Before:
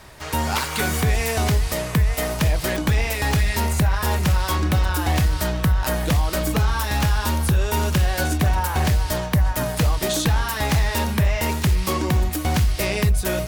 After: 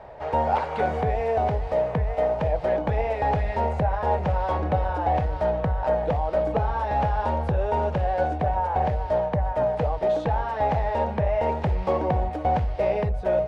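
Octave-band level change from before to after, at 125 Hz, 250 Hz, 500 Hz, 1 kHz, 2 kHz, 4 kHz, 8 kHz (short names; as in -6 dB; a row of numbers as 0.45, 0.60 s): -7.5 dB, -7.0 dB, +4.5 dB, +3.0 dB, -10.0 dB, -19.0 dB, under -30 dB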